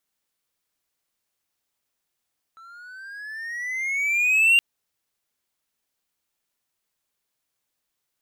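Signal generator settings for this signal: gliding synth tone triangle, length 2.02 s, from 1.32 kHz, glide +13 st, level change +31.5 dB, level -10.5 dB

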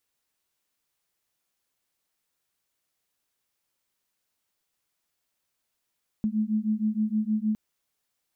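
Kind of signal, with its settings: beating tones 212 Hz, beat 6.4 Hz, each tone -26.5 dBFS 1.31 s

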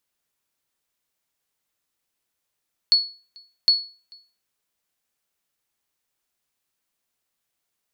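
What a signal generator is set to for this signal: sonar ping 4.39 kHz, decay 0.36 s, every 0.76 s, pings 2, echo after 0.44 s, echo -29.5 dB -9 dBFS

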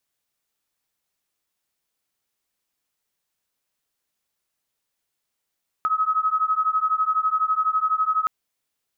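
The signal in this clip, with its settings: beating tones 1.27 kHz, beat 12 Hz, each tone -22 dBFS 2.42 s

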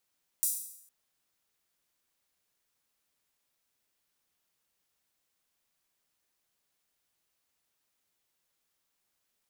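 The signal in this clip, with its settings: open hi-hat length 0.46 s, high-pass 8.4 kHz, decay 0.73 s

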